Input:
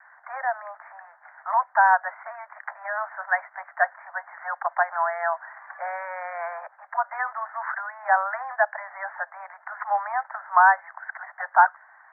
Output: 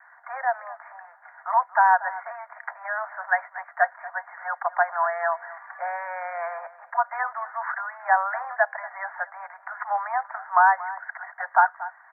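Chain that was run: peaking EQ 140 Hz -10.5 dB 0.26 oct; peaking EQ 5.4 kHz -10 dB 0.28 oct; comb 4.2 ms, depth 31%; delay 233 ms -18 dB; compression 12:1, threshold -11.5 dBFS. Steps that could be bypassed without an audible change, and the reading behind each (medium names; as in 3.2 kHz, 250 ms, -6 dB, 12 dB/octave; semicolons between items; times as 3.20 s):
peaking EQ 140 Hz: input has nothing below 480 Hz; peaking EQ 5.4 kHz: input has nothing above 2.3 kHz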